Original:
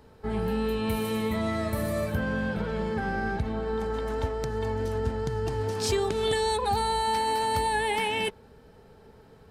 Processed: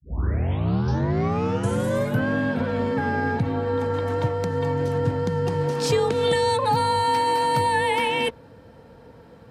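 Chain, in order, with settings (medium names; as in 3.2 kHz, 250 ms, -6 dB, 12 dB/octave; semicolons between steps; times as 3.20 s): tape start-up on the opening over 2.29 s; treble shelf 4.7 kHz -6.5 dB; frequency shift +43 Hz; trim +5.5 dB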